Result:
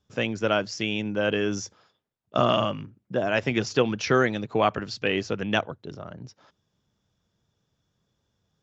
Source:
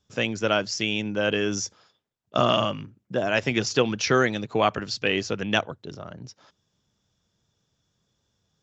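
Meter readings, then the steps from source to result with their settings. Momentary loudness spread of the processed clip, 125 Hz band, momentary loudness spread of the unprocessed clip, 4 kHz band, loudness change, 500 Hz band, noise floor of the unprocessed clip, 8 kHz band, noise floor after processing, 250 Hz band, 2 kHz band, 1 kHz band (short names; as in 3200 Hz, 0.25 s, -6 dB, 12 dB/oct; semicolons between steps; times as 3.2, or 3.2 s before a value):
16 LU, 0.0 dB, 15 LU, -3.5 dB, -1.0 dB, 0.0 dB, -76 dBFS, n/a, -77 dBFS, 0.0 dB, -2.0 dB, -0.5 dB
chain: high shelf 3800 Hz -8.5 dB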